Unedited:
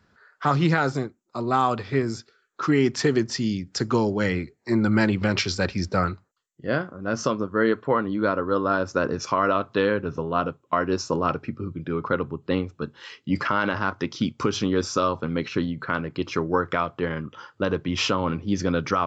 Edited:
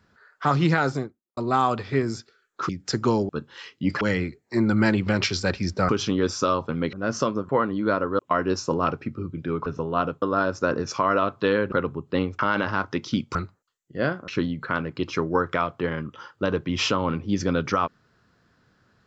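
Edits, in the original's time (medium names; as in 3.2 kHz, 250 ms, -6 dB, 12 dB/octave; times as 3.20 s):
0.88–1.37 s: studio fade out
2.69–3.56 s: delete
6.04–6.97 s: swap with 14.43–15.47 s
7.53–7.85 s: delete
8.55–10.05 s: swap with 10.61–12.08 s
12.75–13.47 s: move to 4.16 s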